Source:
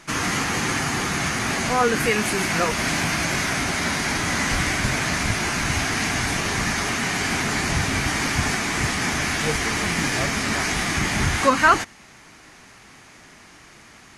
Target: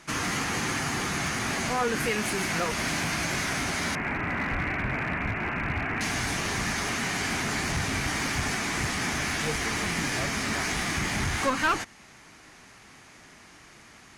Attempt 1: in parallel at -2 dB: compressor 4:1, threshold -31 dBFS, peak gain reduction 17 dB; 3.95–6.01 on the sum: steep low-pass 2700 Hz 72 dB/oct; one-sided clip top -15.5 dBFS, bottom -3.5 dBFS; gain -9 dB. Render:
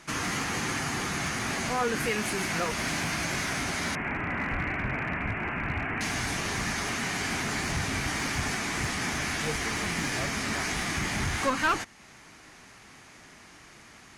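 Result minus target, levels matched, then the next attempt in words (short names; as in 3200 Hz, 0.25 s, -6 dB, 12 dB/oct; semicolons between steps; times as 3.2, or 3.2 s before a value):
compressor: peak gain reduction +6.5 dB
in parallel at -2 dB: compressor 4:1, threshold -22.5 dBFS, peak gain reduction 11 dB; 3.95–6.01 on the sum: steep low-pass 2700 Hz 72 dB/oct; one-sided clip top -15.5 dBFS, bottom -3.5 dBFS; gain -9 dB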